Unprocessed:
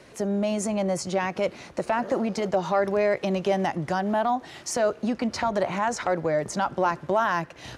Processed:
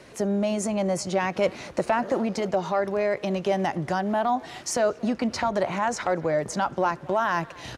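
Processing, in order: vocal rider 0.5 s; speakerphone echo 0.23 s, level -20 dB

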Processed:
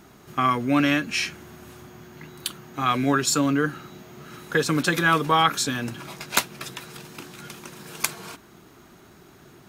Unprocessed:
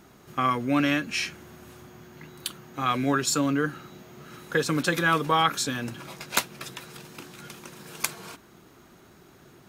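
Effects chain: notch 520 Hz, Q 12; gain +3 dB

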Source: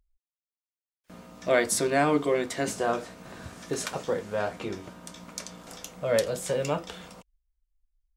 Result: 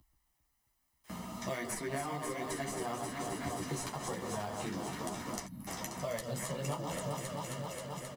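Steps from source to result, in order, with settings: HPF 69 Hz; high shelf 7600 Hz +8 dB; comb 1 ms, depth 59%; on a send: echo with dull and thin repeats by turns 0.133 s, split 1400 Hz, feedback 86%, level -7 dB; on the sum: compressor 6:1, threshold -35 dBFS, peak gain reduction 16.5 dB; spectral gain 5.46–5.67, 280–10000 Hz -24 dB; in parallel at -7 dB: sample-and-hold 11×; on the sum: chorus voices 6, 1.2 Hz, delay 12 ms, depth 3.8 ms; three-band squash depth 40%

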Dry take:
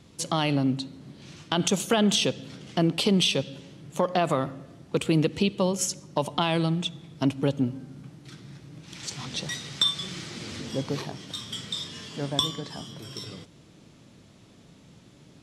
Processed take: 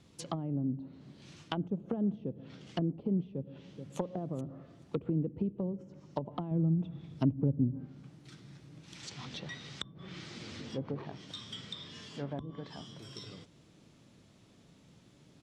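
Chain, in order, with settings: treble ducked by the level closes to 340 Hz, closed at -22 dBFS; 3.22–3.97 echo throw 0.43 s, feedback 15%, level -8 dB; 6.51–7.87 low shelf 250 Hz +8.5 dB; gain -7.5 dB

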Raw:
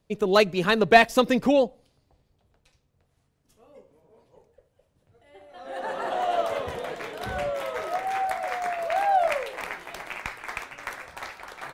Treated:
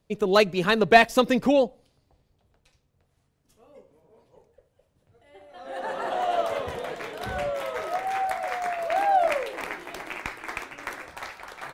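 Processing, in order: 8.9–11.13 bell 320 Hz +9 dB 0.66 oct

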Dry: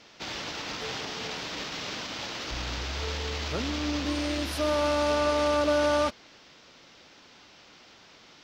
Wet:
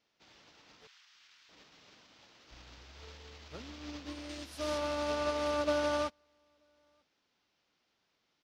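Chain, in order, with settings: 0.87–1.49 inverse Chebyshev high-pass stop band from 210 Hz, stop band 80 dB; 4.29–4.78 bell 8200 Hz +6.5 dB 1.5 oct; echo 0.935 s -21.5 dB; upward expander 2.5:1, over -36 dBFS; gain -4.5 dB

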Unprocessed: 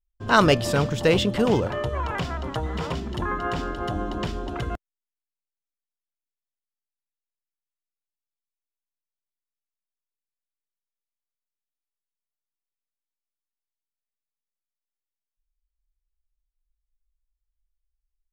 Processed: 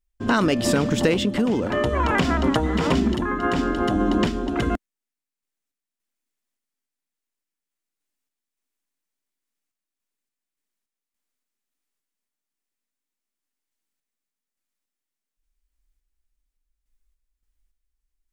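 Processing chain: ten-band EQ 125 Hz -5 dB, 250 Hz +12 dB, 2000 Hz +4 dB, 8000 Hz +4 dB; in parallel at +2.5 dB: limiter -10 dBFS, peak gain reduction 10 dB; on the sum: compressor 6:1, threshold -14 dBFS, peak gain reduction 9.5 dB; random-step tremolo

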